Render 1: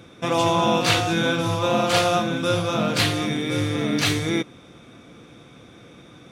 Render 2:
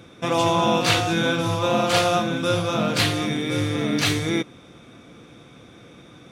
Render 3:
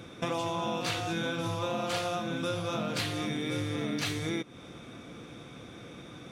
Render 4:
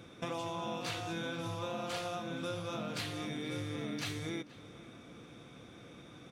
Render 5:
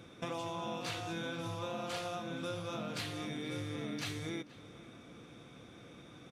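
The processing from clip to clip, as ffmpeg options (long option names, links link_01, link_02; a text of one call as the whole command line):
ffmpeg -i in.wav -af anull out.wav
ffmpeg -i in.wav -af "acompressor=threshold=-30dB:ratio=6" out.wav
ffmpeg -i in.wav -filter_complex "[0:a]asplit=2[link_01][link_02];[link_02]adelay=478.1,volume=-17dB,highshelf=frequency=4000:gain=-10.8[link_03];[link_01][link_03]amix=inputs=2:normalize=0,volume=-6.5dB" out.wav
ffmpeg -i in.wav -af "aresample=32000,aresample=44100,volume=-1dB" out.wav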